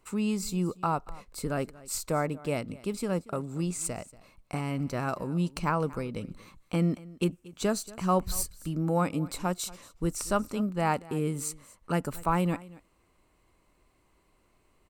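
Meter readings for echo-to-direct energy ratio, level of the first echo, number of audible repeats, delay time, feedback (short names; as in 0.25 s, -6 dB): -20.5 dB, -20.5 dB, 1, 0.234 s, no steady repeat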